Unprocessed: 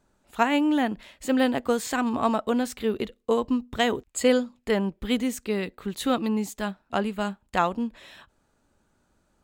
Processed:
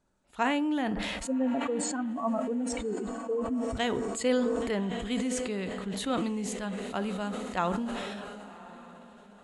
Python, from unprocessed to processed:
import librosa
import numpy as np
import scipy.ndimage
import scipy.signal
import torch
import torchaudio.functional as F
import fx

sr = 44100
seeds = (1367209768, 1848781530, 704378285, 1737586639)

y = fx.spec_expand(x, sr, power=2.4, at=(1.27, 3.77))
y = scipy.signal.sosfilt(scipy.signal.butter(12, 11000.0, 'lowpass', fs=sr, output='sos'), y)
y = fx.echo_diffused(y, sr, ms=1116, feedback_pct=42, wet_db=-15)
y = fx.rev_fdn(y, sr, rt60_s=0.61, lf_ratio=0.9, hf_ratio=0.5, size_ms=32.0, drr_db=13.5)
y = fx.sustainer(y, sr, db_per_s=22.0)
y = y * librosa.db_to_amplitude(-7.5)